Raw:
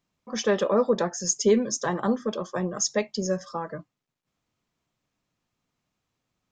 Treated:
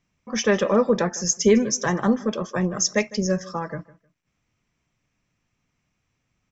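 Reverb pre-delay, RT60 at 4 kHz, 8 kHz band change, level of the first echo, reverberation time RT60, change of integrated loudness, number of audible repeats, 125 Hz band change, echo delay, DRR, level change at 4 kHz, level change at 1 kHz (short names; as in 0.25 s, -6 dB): none, none, +3.5 dB, -20.0 dB, none, +3.5 dB, 2, +6.5 dB, 0.155 s, none, +4.0 dB, +2.5 dB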